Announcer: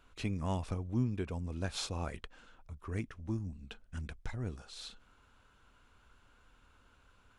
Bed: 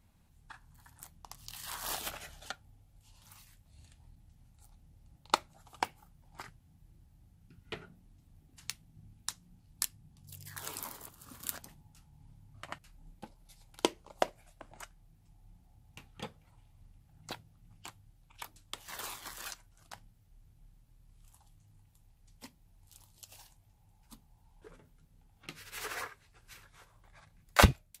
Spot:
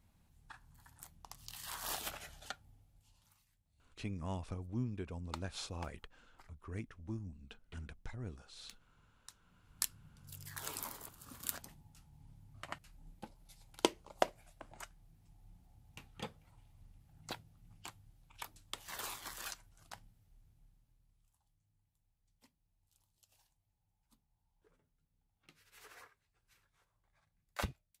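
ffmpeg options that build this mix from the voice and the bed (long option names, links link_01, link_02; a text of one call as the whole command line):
ffmpeg -i stem1.wav -i stem2.wav -filter_complex "[0:a]adelay=3800,volume=-6dB[link_01];[1:a]volume=12.5dB,afade=type=out:start_time=2.71:duration=0.67:silence=0.199526,afade=type=in:start_time=9.41:duration=0.47:silence=0.16788,afade=type=out:start_time=19.83:duration=1.48:silence=0.158489[link_02];[link_01][link_02]amix=inputs=2:normalize=0" out.wav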